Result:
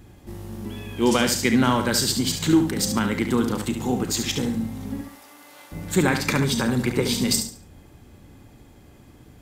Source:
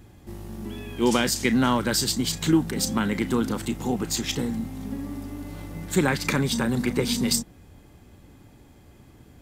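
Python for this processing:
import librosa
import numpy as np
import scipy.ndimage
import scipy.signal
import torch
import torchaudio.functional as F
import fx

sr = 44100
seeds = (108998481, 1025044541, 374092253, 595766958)

p1 = fx.highpass(x, sr, hz=830.0, slope=12, at=(5.01, 5.72))
p2 = p1 + fx.echo_feedback(p1, sr, ms=71, feedback_pct=29, wet_db=-7.5, dry=0)
y = F.gain(torch.from_numpy(p2), 1.5).numpy()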